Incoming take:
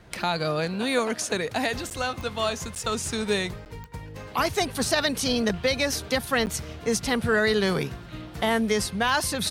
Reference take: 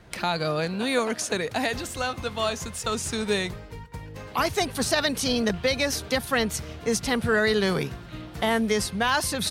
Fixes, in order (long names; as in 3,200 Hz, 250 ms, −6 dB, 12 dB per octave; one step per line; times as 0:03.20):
click removal
repair the gap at 0:01.90/0:02.75/0:03.65/0:06.46, 9.4 ms